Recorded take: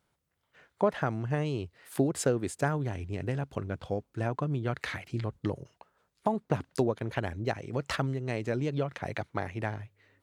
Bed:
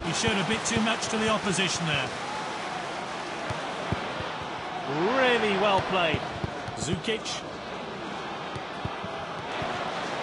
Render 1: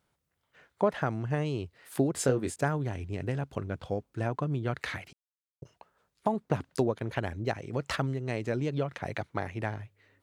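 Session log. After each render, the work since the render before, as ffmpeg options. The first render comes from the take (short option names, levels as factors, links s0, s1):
-filter_complex "[0:a]asettb=1/sr,asplit=3[s0][s1][s2];[s0]atrim=end=2.124[s3];[s1]atrim=start=2.12:end=2.56,asetpts=PTS-STARTPTS,afade=t=in:d=0.004:c=qsin,afade=t=out:st=0.436:d=0.004:c=qsin,asplit=2[s4][s5];[s5]adelay=23,volume=0.447[s6];[s4][s6]amix=inputs=2:normalize=0,atrim=end_sample=19404[s7];[s2]atrim=start=2.556[s8];[s3][s7]acrossfade=d=0.004:c1=hsin:c2=qsin[s9];[s9][s8]acrossfade=d=0.004:c1=qsin:c2=hsin,asplit=3[s10][s11][s12];[s10]atrim=end=5.13,asetpts=PTS-STARTPTS,afade=t=out:st=5.126:d=0.004:c=hsin[s13];[s11]atrim=start=5.13:end=5.62,asetpts=PTS-STARTPTS,volume=0[s14];[s12]atrim=start=5.62,asetpts=PTS-STARTPTS,afade=t=in:d=0.004:c=hsin[s15];[s13][s14][s15]concat=n=3:v=0:a=1"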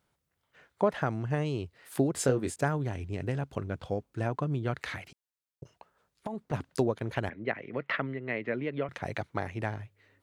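-filter_complex "[0:a]asplit=3[s0][s1][s2];[s0]afade=t=out:st=4.75:d=0.02[s3];[s1]acompressor=threshold=0.0251:ratio=6:attack=3.2:release=140:knee=1:detection=peak,afade=t=in:st=4.75:d=0.02,afade=t=out:st=6.52:d=0.02[s4];[s2]afade=t=in:st=6.52:d=0.02[s5];[s3][s4][s5]amix=inputs=3:normalize=0,asettb=1/sr,asplit=3[s6][s7][s8];[s6]atrim=end=7.294[s9];[s7]atrim=start=7.29:end=8.89,asetpts=PTS-STARTPTS,afade=t=in:d=0.004:c=qsin,afade=t=out:st=1.596:d=0.004:c=qsin,highpass=f=150:w=0.5412,highpass=f=150:w=1.3066,equalizer=f=160:t=q:w=4:g=-7,equalizer=f=340:t=q:w=4:g=-3,equalizer=f=820:t=q:w=4:g=-5,equalizer=f=2000:t=q:w=4:g=9,lowpass=f=3100:w=0.5412,lowpass=f=3100:w=1.3066[s10];[s8]atrim=start=8.886[s11];[s9][s10]acrossfade=d=0.004:c1=hsin:c2=qsin[s12];[s12][s11]acrossfade=d=0.004:c1=qsin:c2=hsin"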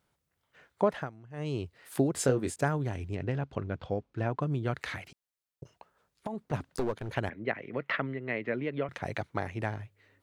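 -filter_complex "[0:a]asettb=1/sr,asplit=3[s0][s1][s2];[s0]atrim=end=3.154[s3];[s1]atrim=start=3.15:end=4.41,asetpts=PTS-STARTPTS,afade=t=in:d=0.004:c=qsin,afade=t=out:st=1.256:d=0.004:c=qsin,lowpass=4300[s4];[s2]atrim=start=4.406[s5];[s3][s4]acrossfade=d=0.004:c1=hsin:c2=qsin[s6];[s6][s5]acrossfade=d=0.004:c1=qsin:c2=hsin,asettb=1/sr,asplit=3[s7][s8][s9];[s7]atrim=end=6.584[s10];[s8]atrim=start=6.58:end=7.12,asetpts=PTS-STARTPTS,afade=t=in:d=0.004:c=qsin,afade=t=out:st=0.536:d=0.004:c=qsin,aeval=exprs='clip(val(0),-1,0.0237)':c=same[s11];[s9]atrim=start=7.116[s12];[s10][s11]acrossfade=d=0.004:c1=hsin:c2=qsin[s13];[s13][s12]acrossfade=d=0.004:c1=qsin:c2=hsin,asplit=3[s14][s15][s16];[s14]atrim=end=1.11,asetpts=PTS-STARTPTS,afade=t=out:st=0.84:d=0.27:c=qsin:silence=0.125893[s17];[s15]atrim=start=1.11:end=1.33,asetpts=PTS-STARTPTS,volume=0.126[s18];[s16]atrim=start=1.33,asetpts=PTS-STARTPTS,afade=t=in:d=0.27:c=qsin:silence=0.125893[s19];[s17][s18][s19]concat=n=3:v=0:a=1"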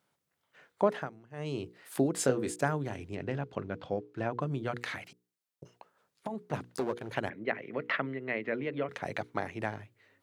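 -af "highpass=150,bandreject=f=60:t=h:w=6,bandreject=f=120:t=h:w=6,bandreject=f=180:t=h:w=6,bandreject=f=240:t=h:w=6,bandreject=f=300:t=h:w=6,bandreject=f=360:t=h:w=6,bandreject=f=420:t=h:w=6,bandreject=f=480:t=h:w=6"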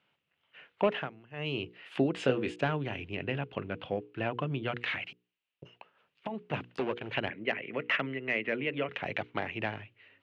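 -filter_complex "[0:a]acrossover=split=650[s0][s1];[s1]asoftclip=type=tanh:threshold=0.0398[s2];[s0][s2]amix=inputs=2:normalize=0,lowpass=f=2800:t=q:w=5"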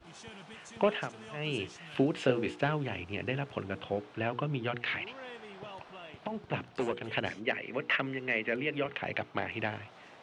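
-filter_complex "[1:a]volume=0.0708[s0];[0:a][s0]amix=inputs=2:normalize=0"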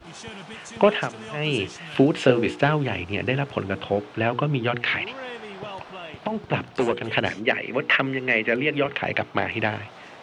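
-af "volume=3.16"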